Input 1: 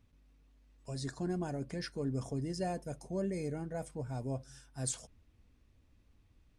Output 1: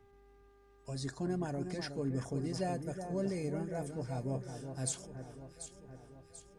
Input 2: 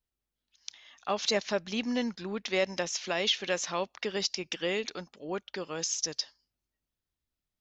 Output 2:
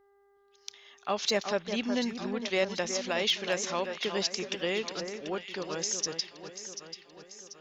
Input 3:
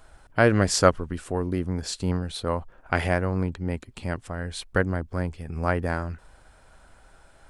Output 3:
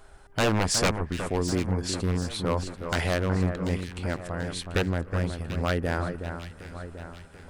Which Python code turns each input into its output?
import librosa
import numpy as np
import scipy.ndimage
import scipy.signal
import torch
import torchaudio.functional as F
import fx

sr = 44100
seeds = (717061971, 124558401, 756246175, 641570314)

y = 10.0 ** (-16.5 / 20.0) * (np.abs((x / 10.0 ** (-16.5 / 20.0) + 3.0) % 4.0 - 2.0) - 1.0)
y = fx.dmg_buzz(y, sr, base_hz=400.0, harmonics=5, level_db=-65.0, tilt_db=-8, odd_only=False)
y = fx.echo_alternate(y, sr, ms=369, hz=1900.0, feedback_pct=70, wet_db=-7.5)